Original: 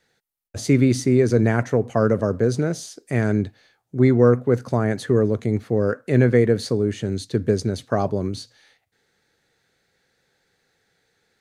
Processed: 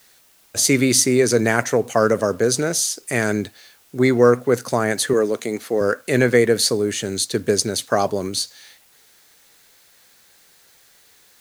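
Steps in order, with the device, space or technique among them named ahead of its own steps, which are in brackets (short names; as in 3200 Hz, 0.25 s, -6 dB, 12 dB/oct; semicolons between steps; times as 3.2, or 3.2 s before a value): turntable without a phono preamp (RIAA curve recording; white noise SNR 35 dB); 5.13–5.81 HPF 230 Hz 12 dB/oct; gain +5.5 dB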